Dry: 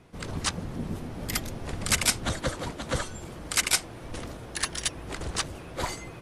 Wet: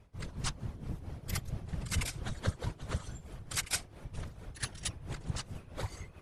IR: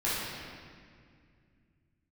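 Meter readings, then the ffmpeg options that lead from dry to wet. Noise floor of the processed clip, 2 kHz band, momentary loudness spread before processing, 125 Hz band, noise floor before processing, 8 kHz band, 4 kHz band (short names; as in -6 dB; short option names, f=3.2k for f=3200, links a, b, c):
-55 dBFS, -11.0 dB, 14 LU, -2.0 dB, -43 dBFS, -11.0 dB, -11.0 dB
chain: -af "tremolo=f=4.5:d=0.73,lowshelf=f=100:t=q:w=3:g=9,afftfilt=real='hypot(re,im)*cos(2*PI*random(0))':imag='hypot(re,im)*sin(2*PI*random(1))':win_size=512:overlap=0.75,volume=-2dB"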